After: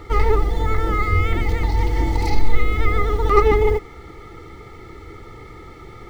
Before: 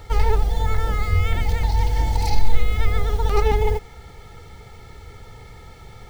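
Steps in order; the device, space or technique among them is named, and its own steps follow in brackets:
inside a helmet (high-shelf EQ 4,900 Hz −5.5 dB; hollow resonant body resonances 330/1,200/2,000 Hz, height 16 dB, ringing for 40 ms)

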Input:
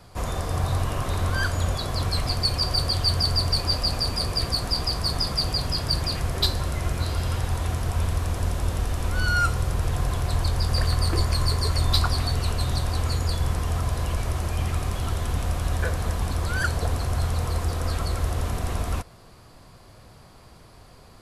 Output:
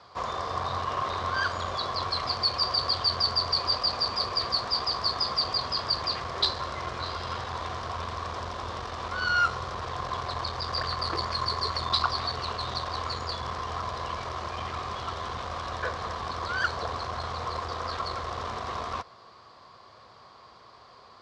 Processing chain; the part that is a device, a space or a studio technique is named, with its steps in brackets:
guitar amplifier (tube saturation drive 16 dB, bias 0.4; bass and treble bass −10 dB, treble +7 dB; loudspeaker in its box 84–4,600 Hz, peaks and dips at 160 Hz −5 dB, 290 Hz −6 dB, 1,100 Hz +10 dB, 2,600 Hz −4 dB)

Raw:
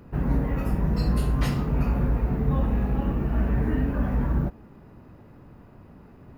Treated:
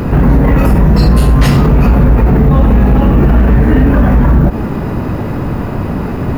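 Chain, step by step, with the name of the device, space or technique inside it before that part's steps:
loud club master (downward compressor 2.5 to 1, threshold −25 dBFS, peak gain reduction 5.5 dB; hard clipping −22 dBFS, distortion −19 dB; boost into a limiter +33 dB)
level −1 dB

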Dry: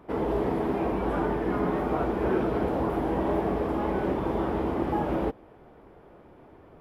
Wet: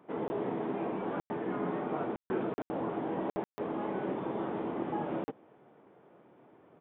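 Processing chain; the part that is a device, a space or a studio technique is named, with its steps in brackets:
call with lost packets (high-pass filter 130 Hz 24 dB per octave; downsampling to 8,000 Hz; dropped packets of 20 ms bursts)
level −7 dB

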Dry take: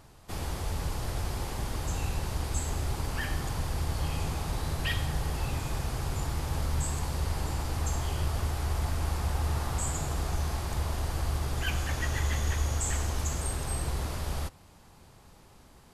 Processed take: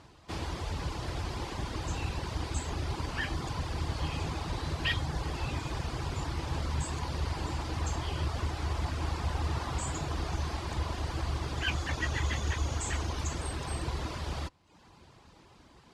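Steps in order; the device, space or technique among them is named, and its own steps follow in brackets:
inside a cardboard box (low-pass filter 4,000 Hz 12 dB per octave; hollow resonant body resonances 320/1,000 Hz, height 6 dB)
reverb reduction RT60 0.67 s
high-pass filter 47 Hz
high-shelf EQ 3,300 Hz +9 dB

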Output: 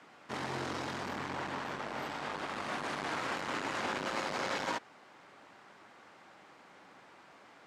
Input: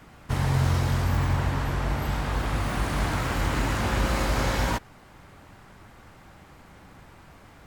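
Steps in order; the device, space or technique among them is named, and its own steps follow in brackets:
public-address speaker with an overloaded transformer (saturating transformer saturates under 230 Hz; band-pass filter 270–6,400 Hz)
low-shelf EQ 240 Hz −5.5 dB
level −3.5 dB

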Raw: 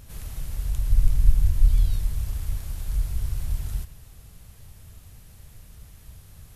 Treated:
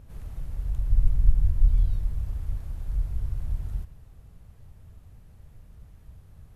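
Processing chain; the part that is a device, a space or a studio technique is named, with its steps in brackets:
through cloth (high-shelf EQ 2,200 Hz −16.5 dB)
level −2 dB

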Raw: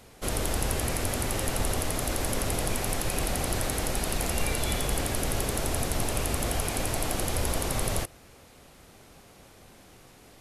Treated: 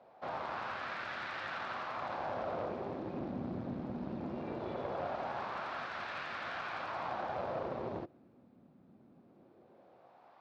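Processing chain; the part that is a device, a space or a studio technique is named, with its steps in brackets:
wah-wah guitar rig (LFO wah 0.2 Hz 230–1,600 Hz, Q 2.1; tube saturation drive 35 dB, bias 0.75; loudspeaker in its box 99–4,500 Hz, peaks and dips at 290 Hz −4 dB, 440 Hz −7 dB, 2,000 Hz −4 dB, 3,000 Hz −4 dB)
level +6.5 dB

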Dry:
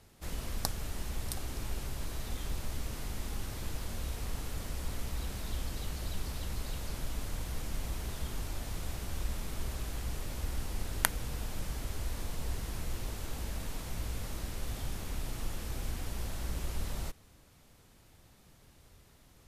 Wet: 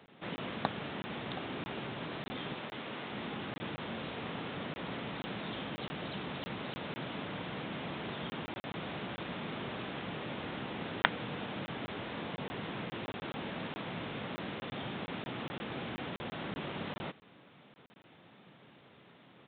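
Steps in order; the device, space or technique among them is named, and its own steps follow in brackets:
call with lost packets (high-pass filter 150 Hz 24 dB per octave; downsampling to 8,000 Hz; dropped packets of 20 ms random)
0:02.54–0:03.13: low-shelf EQ 190 Hz −10 dB
level +6.5 dB

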